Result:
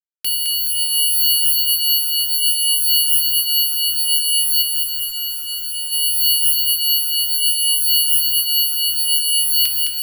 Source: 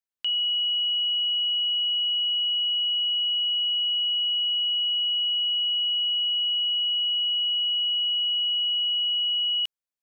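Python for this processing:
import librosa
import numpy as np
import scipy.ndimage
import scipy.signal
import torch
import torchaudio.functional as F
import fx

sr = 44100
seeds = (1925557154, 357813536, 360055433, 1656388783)

p1 = fx.envelope_flatten(x, sr, power=0.6)
p2 = fx.dereverb_blind(p1, sr, rt60_s=1.3)
p3 = fx.rev_fdn(p2, sr, rt60_s=1.8, lf_ratio=1.2, hf_ratio=0.65, size_ms=37.0, drr_db=4.0)
p4 = fx.rotary(p3, sr, hz=0.6)
p5 = fx.quant_companded(p4, sr, bits=6)
p6 = p5 + fx.echo_diffused(p5, sr, ms=617, feedback_pct=54, wet_db=-8.0, dry=0)
p7 = fx.tube_stage(p6, sr, drive_db=34.0, bias=0.7, at=(4.61, 5.91), fade=0.02)
p8 = (np.kron(scipy.signal.resample_poly(p7, 1, 6), np.eye(6)[0]) * 6)[:len(p7)]
p9 = fx.echo_crushed(p8, sr, ms=212, feedback_pct=55, bits=7, wet_db=-4.0)
y = p9 * 10.0 ** (3.0 / 20.0)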